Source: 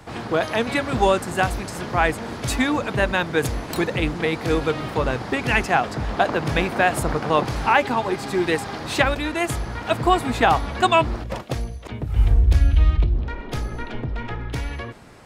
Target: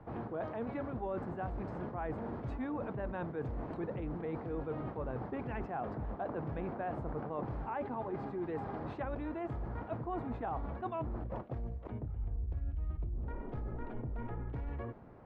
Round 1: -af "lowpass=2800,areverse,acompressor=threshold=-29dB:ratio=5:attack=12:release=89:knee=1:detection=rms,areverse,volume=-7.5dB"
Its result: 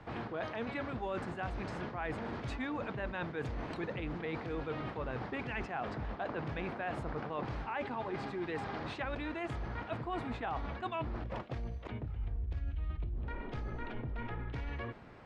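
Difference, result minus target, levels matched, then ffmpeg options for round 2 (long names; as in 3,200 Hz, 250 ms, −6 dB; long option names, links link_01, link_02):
2,000 Hz band +8.0 dB
-af "lowpass=960,areverse,acompressor=threshold=-29dB:ratio=5:attack=12:release=89:knee=1:detection=rms,areverse,volume=-7.5dB"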